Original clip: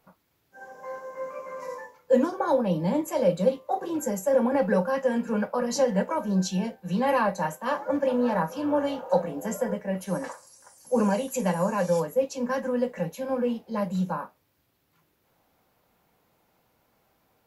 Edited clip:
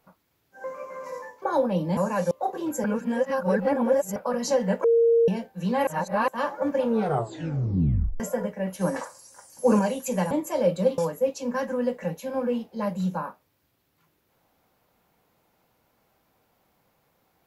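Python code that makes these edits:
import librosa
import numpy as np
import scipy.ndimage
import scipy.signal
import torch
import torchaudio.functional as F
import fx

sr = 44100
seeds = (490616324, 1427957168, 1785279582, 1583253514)

y = fx.edit(x, sr, fx.cut(start_s=0.64, length_s=0.56),
    fx.cut(start_s=1.98, length_s=0.39),
    fx.swap(start_s=2.92, length_s=0.67, other_s=11.59, other_length_s=0.34),
    fx.reverse_span(start_s=4.12, length_s=1.32),
    fx.bleep(start_s=6.12, length_s=0.44, hz=463.0, db=-15.5),
    fx.reverse_span(start_s=7.15, length_s=0.41),
    fx.tape_stop(start_s=8.12, length_s=1.36),
    fx.clip_gain(start_s=10.09, length_s=0.98, db=3.5), tone=tone)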